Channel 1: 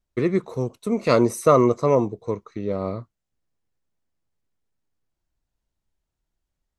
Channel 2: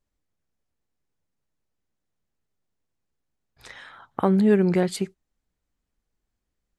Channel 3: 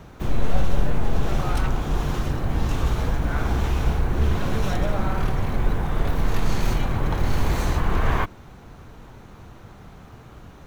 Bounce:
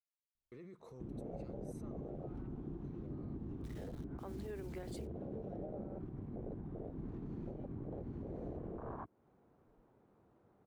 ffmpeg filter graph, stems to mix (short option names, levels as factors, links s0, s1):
-filter_complex "[0:a]acompressor=threshold=0.0708:ratio=6,alimiter=level_in=1.58:limit=0.0631:level=0:latency=1:release=16,volume=0.631,adelay=350,volume=0.133,asplit=3[s0][s1][s2];[s0]atrim=end=2.1,asetpts=PTS-STARTPTS,afade=t=out:st=2.096:d=0.004:c=hsin[s3];[s1]atrim=start=2.1:end=2.84,asetpts=PTS-STARTPTS,volume=0[s4];[s2]atrim=start=2.84,asetpts=PTS-STARTPTS,afade=t=in:d=0.004:c=hsin[s5];[s3][s4][s5]concat=n=3:v=0:a=1[s6];[1:a]highpass=f=340:w=0.5412,highpass=f=340:w=1.3066,acrusher=bits=6:mix=0:aa=0.000001,volume=0.224[s7];[2:a]afwtdn=0.0794,bandpass=f=410:t=q:w=0.91:csg=0,adelay=800,volume=0.75[s8];[s6][s7][s8]amix=inputs=3:normalize=0,alimiter=level_in=4.22:limit=0.0631:level=0:latency=1:release=244,volume=0.237"